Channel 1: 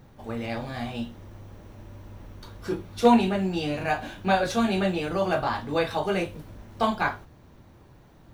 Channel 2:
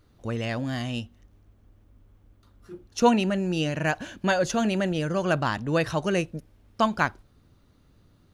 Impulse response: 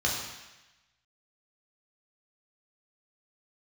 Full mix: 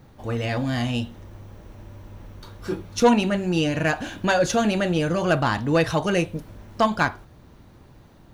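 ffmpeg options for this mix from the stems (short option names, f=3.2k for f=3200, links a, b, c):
-filter_complex "[0:a]volume=1.5dB[a];[1:a]dynaudnorm=f=370:g=3:m=4dB,asoftclip=type=tanh:threshold=-10.5dB,volume=0.5dB,asplit=2[b][c];[c]apad=whole_len=367474[d];[a][d]sidechaincompress=threshold=-23dB:ratio=8:attack=20:release=390[e];[e][b]amix=inputs=2:normalize=0"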